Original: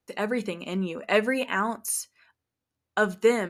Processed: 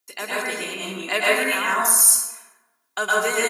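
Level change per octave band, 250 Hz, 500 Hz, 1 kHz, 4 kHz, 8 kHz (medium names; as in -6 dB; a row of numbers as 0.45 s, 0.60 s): -5.0 dB, 0.0 dB, +6.0 dB, +10.5 dB, +17.0 dB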